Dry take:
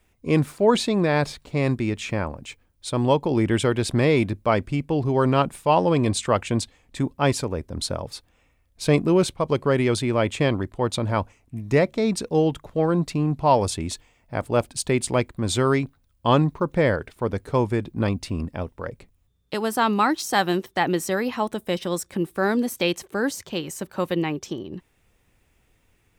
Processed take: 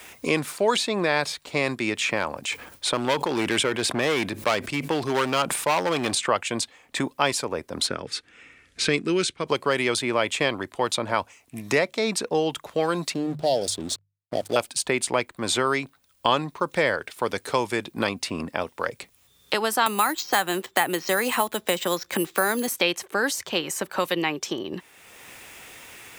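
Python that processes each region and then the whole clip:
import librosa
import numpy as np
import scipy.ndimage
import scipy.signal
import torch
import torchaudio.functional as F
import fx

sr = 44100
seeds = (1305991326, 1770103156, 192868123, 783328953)

y = fx.chain(x, sr, fx.clip_hard(threshold_db=-17.5),
    fx.sustainer(db_per_s=70.0), at=(2.17, 6.15))
y = fx.chain(y, sr, fx.lowpass(hz=9000.0, slope=24),
    fx.band_shelf(hz=780.0, db=-12.5, octaves=1.3), at=(7.87, 9.47))
y = fx.chain(y, sr, fx.ellip_bandstop(low_hz=670.0, high_hz=3300.0, order=3, stop_db=40),
    fx.backlash(play_db=-40.5),
    fx.hum_notches(base_hz=50, count=3), at=(13.14, 14.56))
y = fx.chain(y, sr, fx.resample_bad(factor=4, down='filtered', up='hold'),
    fx.band_squash(depth_pct=70), at=(19.86, 22.68))
y = fx.highpass(y, sr, hz=1000.0, slope=6)
y = fx.band_squash(y, sr, depth_pct=70)
y = y * librosa.db_to_amplitude(5.0)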